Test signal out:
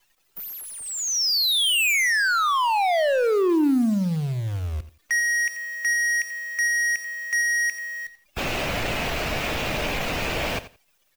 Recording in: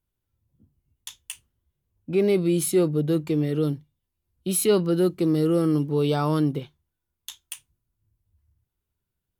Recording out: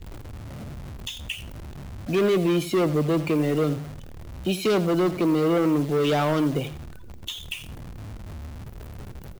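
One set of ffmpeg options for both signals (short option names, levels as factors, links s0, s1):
-filter_complex "[0:a]aeval=exprs='val(0)+0.5*0.02*sgn(val(0))':c=same,afftdn=nr=34:nf=-40,acrossover=split=5500[s0][s1];[s1]acompressor=threshold=0.0158:ratio=4:attack=1:release=60[s2];[s0][s2]amix=inputs=2:normalize=0,equalizer=f=630:t=o:w=0.67:g=7,equalizer=f=2500:t=o:w=0.67:g=10,equalizer=f=10000:t=o:w=0.67:g=-9,acrossover=split=240[s3][s4];[s3]alimiter=level_in=1.41:limit=0.0631:level=0:latency=1,volume=0.708[s5];[s4]volume=13.3,asoftclip=hard,volume=0.075[s6];[s5][s6]amix=inputs=2:normalize=0,acrusher=bits=8:dc=4:mix=0:aa=0.000001,asplit=2[s7][s8];[s8]aecho=0:1:86|172:0.178|0.032[s9];[s7][s9]amix=inputs=2:normalize=0,volume=1.26"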